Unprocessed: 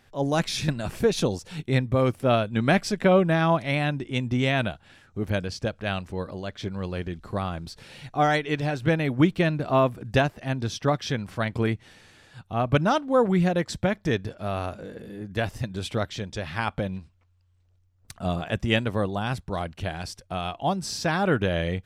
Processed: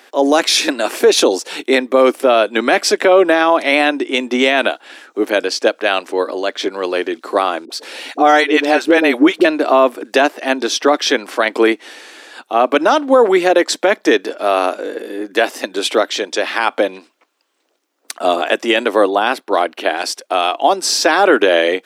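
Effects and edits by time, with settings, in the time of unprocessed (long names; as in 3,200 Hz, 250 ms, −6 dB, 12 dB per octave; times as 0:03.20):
0:07.65–0:09.45: all-pass dispersion highs, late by 51 ms, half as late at 470 Hz
0:19.09–0:19.98: parametric band 7,300 Hz −8.5 dB 1.1 octaves
whole clip: Butterworth high-pass 280 Hz 48 dB per octave; boost into a limiter +17.5 dB; level −1 dB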